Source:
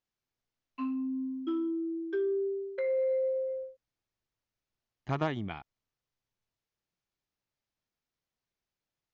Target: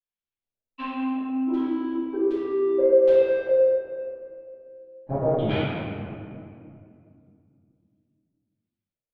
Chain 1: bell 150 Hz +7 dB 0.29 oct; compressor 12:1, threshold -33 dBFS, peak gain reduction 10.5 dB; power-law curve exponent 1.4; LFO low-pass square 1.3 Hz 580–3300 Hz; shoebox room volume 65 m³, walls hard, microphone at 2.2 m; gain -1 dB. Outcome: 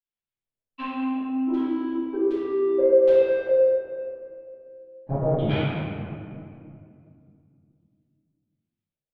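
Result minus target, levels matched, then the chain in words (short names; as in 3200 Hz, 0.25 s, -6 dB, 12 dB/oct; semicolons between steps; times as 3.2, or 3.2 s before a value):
125 Hz band +3.0 dB
bell 150 Hz -2.5 dB 0.29 oct; compressor 12:1, threshold -33 dBFS, peak gain reduction 9 dB; power-law curve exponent 1.4; LFO low-pass square 1.3 Hz 580–3300 Hz; shoebox room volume 65 m³, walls hard, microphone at 2.2 m; gain -1 dB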